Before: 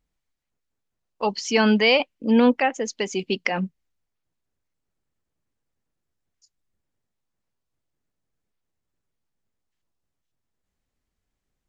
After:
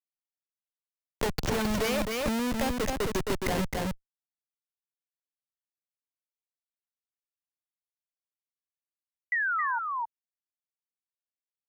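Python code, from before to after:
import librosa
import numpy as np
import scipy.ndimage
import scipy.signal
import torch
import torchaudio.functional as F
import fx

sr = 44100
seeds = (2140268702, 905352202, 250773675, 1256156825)

y = fx.schmitt(x, sr, flips_db=-24.5)
y = fx.spec_paint(y, sr, seeds[0], shape='fall', start_s=9.32, length_s=0.47, low_hz=890.0, high_hz=2000.0, level_db=-32.0)
y = y + 10.0 ** (-4.5 / 20.0) * np.pad(y, (int(265 * sr / 1000.0), 0))[:len(y)]
y = fx.band_squash(y, sr, depth_pct=70)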